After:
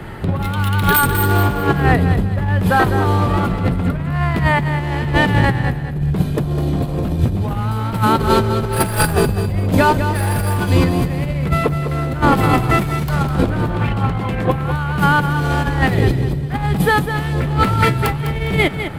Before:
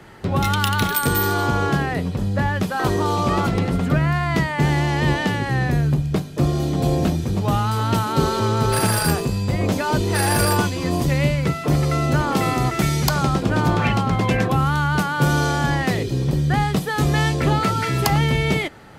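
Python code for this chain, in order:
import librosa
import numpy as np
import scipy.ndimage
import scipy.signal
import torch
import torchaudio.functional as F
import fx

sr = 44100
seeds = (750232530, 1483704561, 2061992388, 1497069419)

p1 = np.clip(x, -10.0 ** (-16.5 / 20.0), 10.0 ** (-16.5 / 20.0))
p2 = fx.low_shelf(p1, sr, hz=140.0, db=9.0)
p3 = fx.over_compress(p2, sr, threshold_db=-21.0, ratio=-0.5)
p4 = fx.peak_eq(p3, sr, hz=6000.0, db=-11.0, octaves=0.83)
p5 = p4 + fx.echo_feedback(p4, sr, ms=203, feedback_pct=32, wet_db=-9.0, dry=0)
y = p5 * librosa.db_to_amplitude(5.5)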